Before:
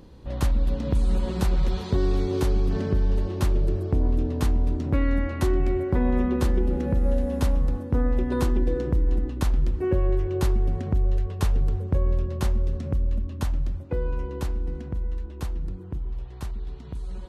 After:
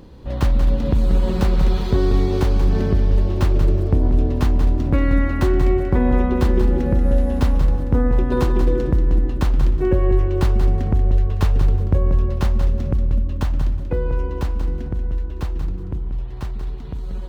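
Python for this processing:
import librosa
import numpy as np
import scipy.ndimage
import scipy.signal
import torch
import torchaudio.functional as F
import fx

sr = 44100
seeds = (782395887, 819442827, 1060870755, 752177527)

p1 = scipy.signal.medfilt(x, 5)
p2 = p1 + fx.echo_feedback(p1, sr, ms=185, feedback_pct=21, wet_db=-8.0, dry=0)
y = p2 * librosa.db_to_amplitude(5.5)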